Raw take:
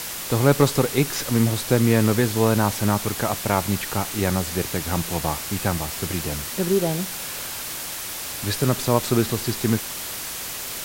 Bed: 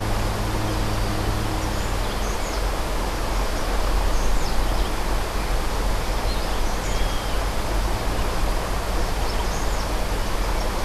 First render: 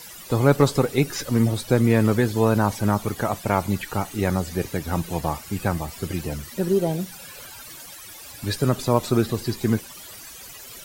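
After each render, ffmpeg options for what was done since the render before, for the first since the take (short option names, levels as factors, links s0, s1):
-af "afftdn=nr=15:nf=-32"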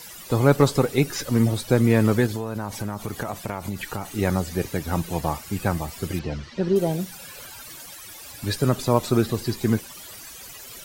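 -filter_complex "[0:a]asettb=1/sr,asplit=3[s0][s1][s2];[s0]atrim=end=2.264[s3];[s1]atrim=start=2.26:end=4.06,asetpts=PTS-STARTPTS,afade=t=in:d=0.004:c=qsin,afade=t=out:st=1.796:d=0.004:c=qsin,acompressor=threshold=0.0708:ratio=12:attack=3.2:release=140:knee=1:detection=peak[s4];[s2]atrim=start=4.056[s5];[s3][s4]acrossfade=d=0.004:c1=hsin:c2=qsin[s6];[s6][s5]acrossfade=d=0.004:c1=qsin:c2=hsin,asettb=1/sr,asplit=3[s7][s8][s9];[s7]atrim=end=6.194[s10];[s8]atrim=start=6.19:end=6.76,asetpts=PTS-STARTPTS,afade=t=in:d=0.004:c=qsin,afade=t=out:st=0.566:d=0.004:c=qsin,lowpass=f=5100:w=0.5412,lowpass=f=5100:w=1.3066[s11];[s9]atrim=start=6.756[s12];[s10][s11]acrossfade=d=0.004:c1=hsin:c2=qsin[s13];[s13][s12]acrossfade=d=0.004:c1=qsin:c2=hsin"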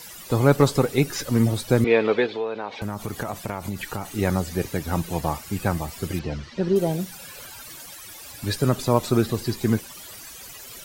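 -filter_complex "[0:a]asettb=1/sr,asplit=3[s0][s1][s2];[s0]atrim=end=1.844[s3];[s1]atrim=start=1.84:end=2.82,asetpts=PTS-STARTPTS,afade=t=in:d=0.004:c=qsin,afade=t=out:st=0.976:d=0.004:c=qsin,highpass=360,equalizer=f=450:t=q:w=4:g=8,equalizer=f=780:t=q:w=4:g=3,equalizer=f=2400:t=q:w=4:g=8,equalizer=f=3700:t=q:w=4:g=7,lowpass=f=4000:w=0.5412,lowpass=f=4000:w=1.3066[s4];[s2]atrim=start=2.816[s5];[s3][s4]acrossfade=d=0.004:c1=hsin:c2=qsin[s6];[s6][s5]acrossfade=d=0.004:c1=qsin:c2=hsin"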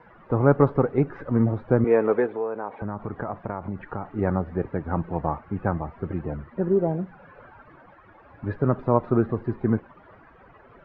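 -af "lowpass=f=1500:w=0.5412,lowpass=f=1500:w=1.3066,lowshelf=f=160:g=-3"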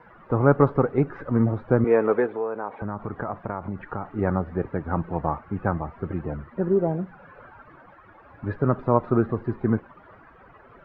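-af "equalizer=f=1300:t=o:w=0.66:g=3"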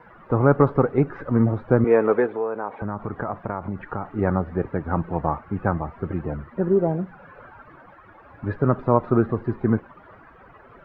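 -af "volume=1.26,alimiter=limit=0.708:level=0:latency=1"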